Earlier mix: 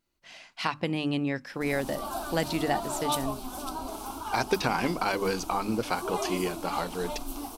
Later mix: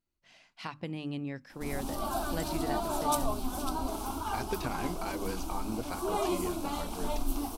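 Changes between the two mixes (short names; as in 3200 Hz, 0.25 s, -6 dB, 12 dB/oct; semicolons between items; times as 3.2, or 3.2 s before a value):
speech -11.5 dB; master: add low shelf 240 Hz +8 dB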